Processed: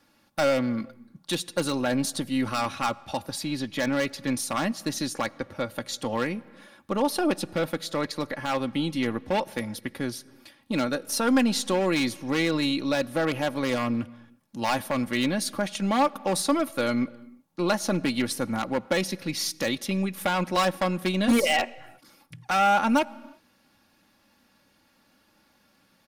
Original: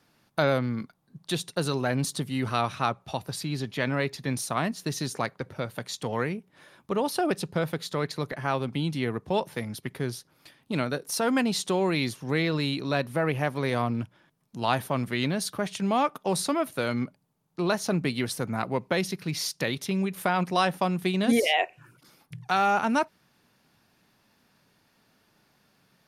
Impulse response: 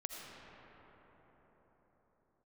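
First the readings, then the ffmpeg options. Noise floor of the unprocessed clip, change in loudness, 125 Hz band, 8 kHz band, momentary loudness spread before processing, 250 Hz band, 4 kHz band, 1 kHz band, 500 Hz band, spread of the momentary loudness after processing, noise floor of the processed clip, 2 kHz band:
-67 dBFS, +1.5 dB, -4.0 dB, +2.5 dB, 9 LU, +3.0 dB, +2.0 dB, +1.0 dB, +1.0 dB, 9 LU, -65 dBFS, +1.0 dB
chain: -filter_complex "[0:a]aeval=exprs='0.355*(cos(1*acos(clip(val(0)/0.355,-1,1)))-cos(1*PI/2))+0.00891*(cos(6*acos(clip(val(0)/0.355,-1,1)))-cos(6*PI/2))':c=same,aeval=exprs='0.141*(abs(mod(val(0)/0.141+3,4)-2)-1)':c=same,aecho=1:1:3.6:0.58,asplit=2[a][b];[1:a]atrim=start_sample=2205,afade=t=out:st=0.42:d=0.01,atrim=end_sample=18963[c];[b][c]afir=irnorm=-1:irlink=0,volume=-16.5dB[d];[a][d]amix=inputs=2:normalize=0"

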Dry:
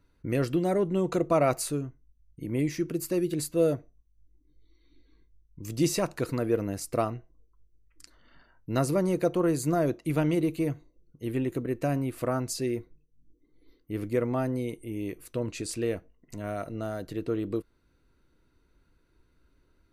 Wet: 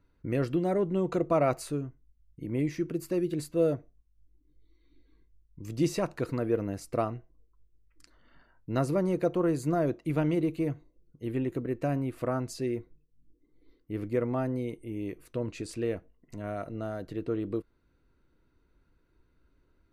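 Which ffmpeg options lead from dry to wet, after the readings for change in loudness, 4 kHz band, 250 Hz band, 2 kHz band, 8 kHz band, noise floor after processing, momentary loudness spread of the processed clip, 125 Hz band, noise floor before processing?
-2.0 dB, -6.5 dB, -1.5 dB, -3.0 dB, -9.5 dB, -69 dBFS, 11 LU, -1.5 dB, -68 dBFS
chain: -af "highshelf=f=4.5k:g=-10.5,volume=-1.5dB"

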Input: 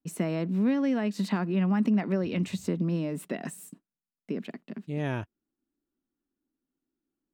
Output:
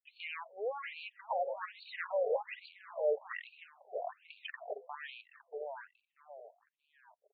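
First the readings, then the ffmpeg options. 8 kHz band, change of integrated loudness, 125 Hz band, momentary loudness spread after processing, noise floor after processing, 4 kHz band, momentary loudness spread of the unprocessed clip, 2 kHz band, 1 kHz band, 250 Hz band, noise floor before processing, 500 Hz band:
under -35 dB, -10.5 dB, under -40 dB, 19 LU, -84 dBFS, -4.5 dB, 15 LU, -3.0 dB, -0.5 dB, under -40 dB, under -85 dBFS, -1.5 dB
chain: -filter_complex "[0:a]highpass=f=390:p=1,aemphasis=mode=production:type=50fm,afftdn=nr=13:nf=-43,highshelf=f=4.6k:g=-10.5,acrossover=split=1300[a][b];[a]dynaudnorm=f=140:g=13:m=9dB[c];[c][b]amix=inputs=2:normalize=0,alimiter=limit=-19dB:level=0:latency=1:release=77,acompressor=threshold=-31dB:ratio=16,volume=29.5dB,asoftclip=hard,volume=-29.5dB,asplit=2[d][e];[e]aecho=0:1:635|1270|1905|2540|3175:0.398|0.163|0.0669|0.0274|0.0112[f];[d][f]amix=inputs=2:normalize=0,afftfilt=real='re*between(b*sr/1024,560*pow(3300/560,0.5+0.5*sin(2*PI*1.2*pts/sr))/1.41,560*pow(3300/560,0.5+0.5*sin(2*PI*1.2*pts/sr))*1.41)':imag='im*between(b*sr/1024,560*pow(3300/560,0.5+0.5*sin(2*PI*1.2*pts/sr))/1.41,560*pow(3300/560,0.5+0.5*sin(2*PI*1.2*pts/sr))*1.41)':win_size=1024:overlap=0.75,volume=10dB"

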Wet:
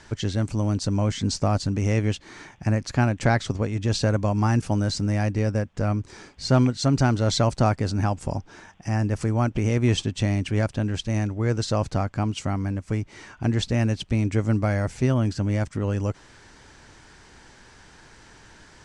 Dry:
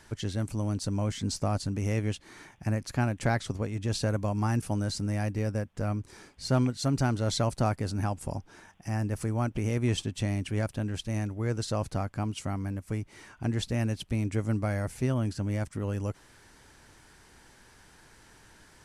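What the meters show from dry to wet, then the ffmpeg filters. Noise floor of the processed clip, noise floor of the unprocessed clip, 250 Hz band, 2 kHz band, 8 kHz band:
-51 dBFS, -58 dBFS, +6.5 dB, +6.5 dB, +4.5 dB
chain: -af "lowpass=f=7.7k:w=0.5412,lowpass=f=7.7k:w=1.3066,volume=6.5dB"

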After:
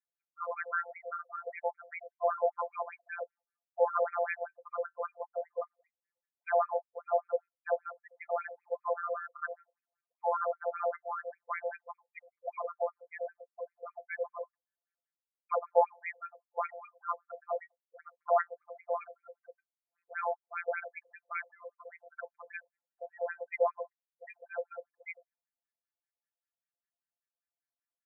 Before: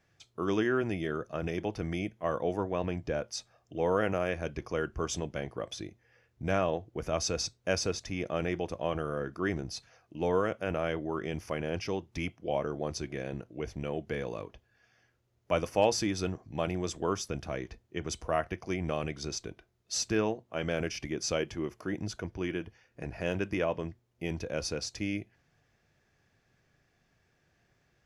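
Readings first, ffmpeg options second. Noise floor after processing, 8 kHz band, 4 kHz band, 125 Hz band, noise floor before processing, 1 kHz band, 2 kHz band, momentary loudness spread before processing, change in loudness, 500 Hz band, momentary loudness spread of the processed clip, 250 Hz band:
under -85 dBFS, under -40 dB, under -40 dB, under -40 dB, -73 dBFS, +3.0 dB, -2.5 dB, 10 LU, -2.5 dB, -2.5 dB, 18 LU, under -40 dB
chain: -af "afftfilt=real='hypot(re,im)*cos(PI*b)':imag='0':win_size=1024:overlap=0.75,afftdn=nr=31:nf=-43,afftfilt=real='re*between(b*sr/1024,650*pow(1800/650,0.5+0.5*sin(2*PI*5.1*pts/sr))/1.41,650*pow(1800/650,0.5+0.5*sin(2*PI*5.1*pts/sr))*1.41)':imag='im*between(b*sr/1024,650*pow(1800/650,0.5+0.5*sin(2*PI*5.1*pts/sr))/1.41,650*pow(1800/650,0.5+0.5*sin(2*PI*5.1*pts/sr))*1.41)':win_size=1024:overlap=0.75,volume=9dB"

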